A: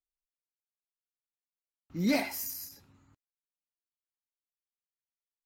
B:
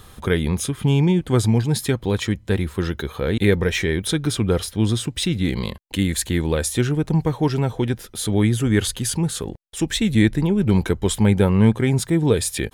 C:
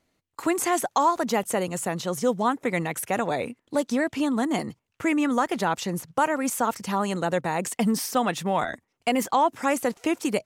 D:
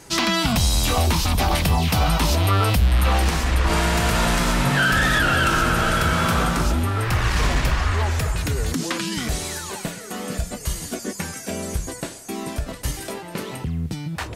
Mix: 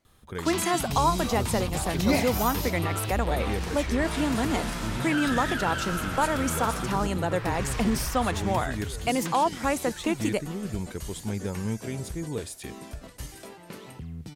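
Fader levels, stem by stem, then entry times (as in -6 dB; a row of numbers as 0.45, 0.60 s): +3.0, -15.5, -2.5, -12.5 dB; 0.00, 0.05, 0.00, 0.35 s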